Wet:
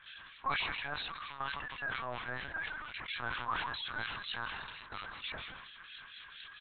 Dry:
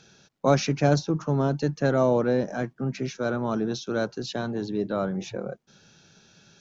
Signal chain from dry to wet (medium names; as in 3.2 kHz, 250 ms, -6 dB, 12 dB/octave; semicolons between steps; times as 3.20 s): jump at every zero crossing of -34 dBFS; high-pass 1.1 kHz 24 dB/octave; gate -39 dBFS, range -10 dB; comb 1.8 ms, depth 97%; compression 6:1, threshold -32 dBFS, peak gain reduction 9.5 dB; harmonic tremolo 4.3 Hz, depth 100%, crossover 1.8 kHz; frequency-shifting echo 158 ms, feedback 35%, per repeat -68 Hz, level -17 dB; LPC vocoder at 8 kHz pitch kept; decay stretcher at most 30 dB/s; trim +1 dB